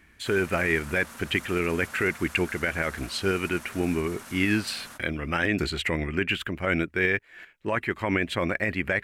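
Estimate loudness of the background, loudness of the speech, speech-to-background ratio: -43.5 LUFS, -27.0 LUFS, 16.5 dB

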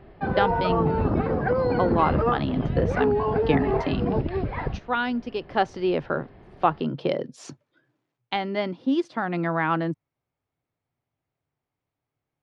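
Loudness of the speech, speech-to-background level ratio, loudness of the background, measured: -27.0 LUFS, -2.0 dB, -25.0 LUFS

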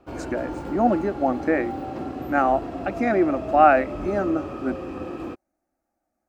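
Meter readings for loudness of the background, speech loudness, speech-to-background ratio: -32.5 LUFS, -23.0 LUFS, 9.5 dB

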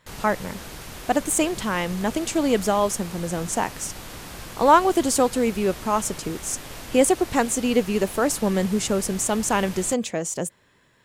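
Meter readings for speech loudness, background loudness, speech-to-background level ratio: -23.0 LUFS, -37.5 LUFS, 14.5 dB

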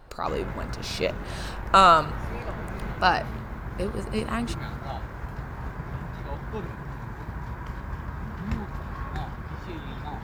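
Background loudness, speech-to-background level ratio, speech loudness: -35.5 LUFS, 11.5 dB, -24.0 LUFS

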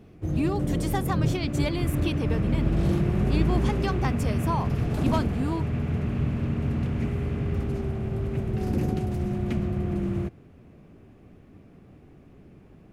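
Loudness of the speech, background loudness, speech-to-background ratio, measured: -32.5 LUFS, -27.5 LUFS, -5.0 dB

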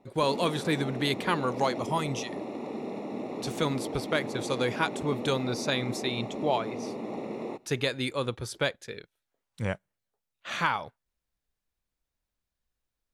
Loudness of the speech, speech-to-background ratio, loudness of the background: -30.5 LUFS, 6.0 dB, -36.5 LUFS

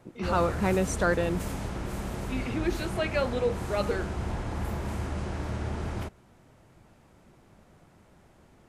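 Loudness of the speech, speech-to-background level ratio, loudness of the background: -29.5 LUFS, 5.0 dB, -34.5 LUFS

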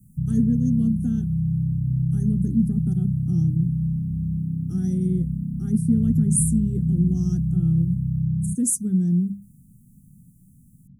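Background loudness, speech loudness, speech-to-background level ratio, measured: -25.0 LUFS, -24.5 LUFS, 0.5 dB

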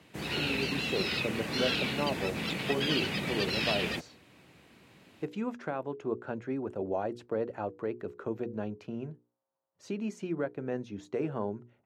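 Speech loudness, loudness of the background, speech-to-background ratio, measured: -36.5 LUFS, -31.5 LUFS, -5.0 dB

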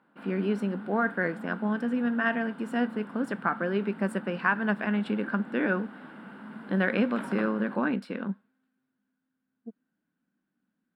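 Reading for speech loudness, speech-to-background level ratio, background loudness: -29.0 LUFS, 14.0 dB, -43.0 LUFS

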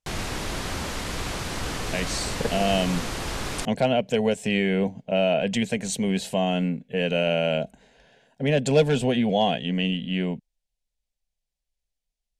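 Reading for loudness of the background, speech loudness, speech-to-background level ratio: -30.5 LUFS, -24.5 LUFS, 6.0 dB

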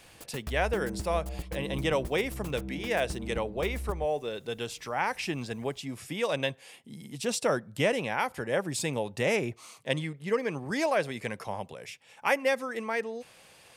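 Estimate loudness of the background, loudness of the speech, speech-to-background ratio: -39.5 LUFS, -31.5 LUFS, 8.0 dB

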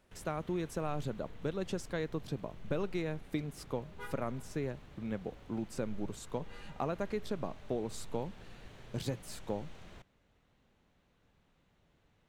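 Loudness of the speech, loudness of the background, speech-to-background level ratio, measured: -39.5 LUFS, -54.5 LUFS, 15.0 dB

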